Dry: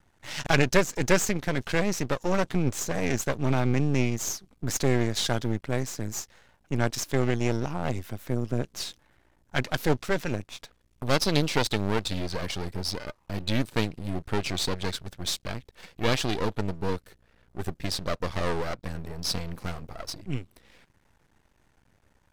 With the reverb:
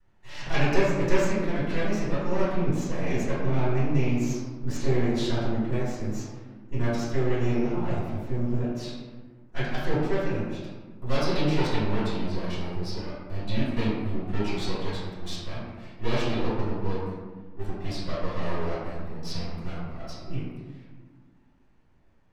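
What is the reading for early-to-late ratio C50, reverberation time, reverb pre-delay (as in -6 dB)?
-1.5 dB, 1.5 s, 3 ms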